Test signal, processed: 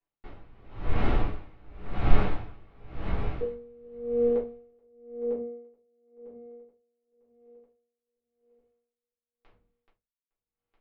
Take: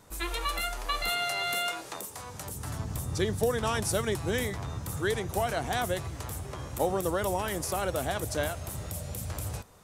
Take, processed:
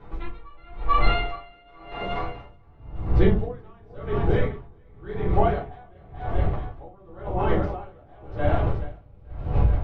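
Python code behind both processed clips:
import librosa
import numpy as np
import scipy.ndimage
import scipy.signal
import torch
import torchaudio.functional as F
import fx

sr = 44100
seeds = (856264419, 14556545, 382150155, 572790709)

y = fx.octave_divider(x, sr, octaves=1, level_db=0.0)
y = scipy.signal.sosfilt(scipy.signal.butter(4, 3100.0, 'lowpass', fs=sr, output='sos'), y)
y = fx.high_shelf(y, sr, hz=2000.0, db=-8.0)
y = fx.rider(y, sr, range_db=5, speed_s=2.0)
y = fx.echo_feedback(y, sr, ms=430, feedback_pct=45, wet_db=-7.0)
y = fx.room_shoebox(y, sr, seeds[0], volume_m3=140.0, walls='furnished', distance_m=3.5)
y = y * 10.0 ** (-31 * (0.5 - 0.5 * np.cos(2.0 * np.pi * 0.93 * np.arange(len(y)) / sr)) / 20.0)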